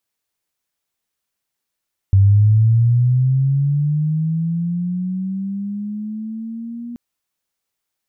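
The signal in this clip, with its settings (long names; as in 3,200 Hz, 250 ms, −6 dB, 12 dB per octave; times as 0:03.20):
glide linear 96 Hz → 240 Hz −7.5 dBFS → −27 dBFS 4.83 s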